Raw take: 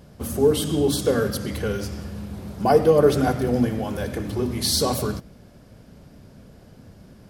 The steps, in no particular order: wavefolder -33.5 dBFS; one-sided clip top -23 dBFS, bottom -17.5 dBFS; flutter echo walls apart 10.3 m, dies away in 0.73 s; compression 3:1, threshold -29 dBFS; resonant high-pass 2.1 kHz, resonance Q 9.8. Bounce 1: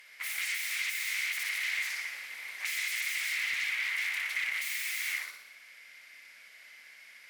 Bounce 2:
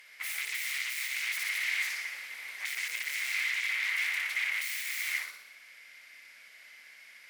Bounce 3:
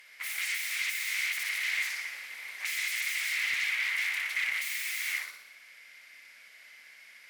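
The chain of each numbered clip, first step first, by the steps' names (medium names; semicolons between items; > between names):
flutter echo > wavefolder > resonant high-pass > one-sided clip > compression; flutter echo > one-sided clip > wavefolder > compression > resonant high-pass; flutter echo > wavefolder > compression > resonant high-pass > one-sided clip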